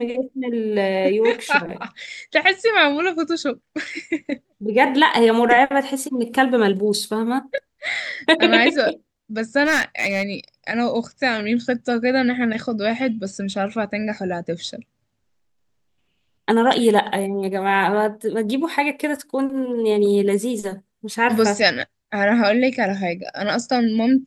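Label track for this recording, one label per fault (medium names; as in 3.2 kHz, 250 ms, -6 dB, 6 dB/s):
9.640000	10.230000	clipped -14.5 dBFS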